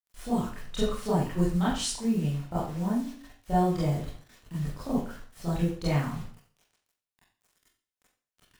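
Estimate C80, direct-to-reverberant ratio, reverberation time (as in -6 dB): 6.5 dB, -10.0 dB, 0.45 s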